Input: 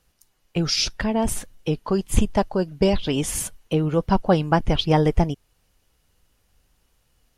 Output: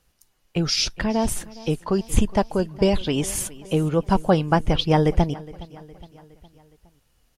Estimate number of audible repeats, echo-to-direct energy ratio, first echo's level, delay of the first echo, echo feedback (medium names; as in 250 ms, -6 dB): 3, -18.5 dB, -20.0 dB, 414 ms, 52%